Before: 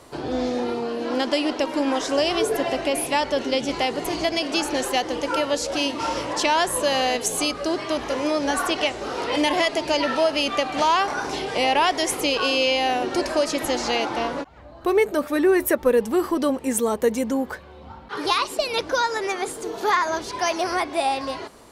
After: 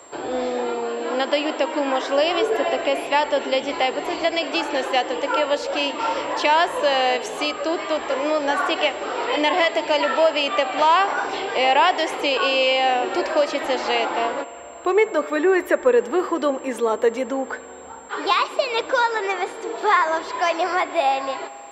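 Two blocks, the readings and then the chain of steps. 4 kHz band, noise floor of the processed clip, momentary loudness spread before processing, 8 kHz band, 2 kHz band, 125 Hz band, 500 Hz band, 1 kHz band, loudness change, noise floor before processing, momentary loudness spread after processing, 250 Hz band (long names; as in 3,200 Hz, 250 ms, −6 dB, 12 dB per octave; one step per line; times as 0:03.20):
+0.5 dB, −38 dBFS, 7 LU, −7.5 dB, +3.0 dB, below −10 dB, +2.5 dB, +3.5 dB, +1.5 dB, −43 dBFS, 8 LU, −2.5 dB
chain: three-way crossover with the lows and the highs turned down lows −17 dB, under 330 Hz, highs −23 dB, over 4,100 Hz
spring reverb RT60 3.6 s, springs 43 ms, chirp 50 ms, DRR 16 dB
steady tone 7,500 Hz −50 dBFS
level +3.5 dB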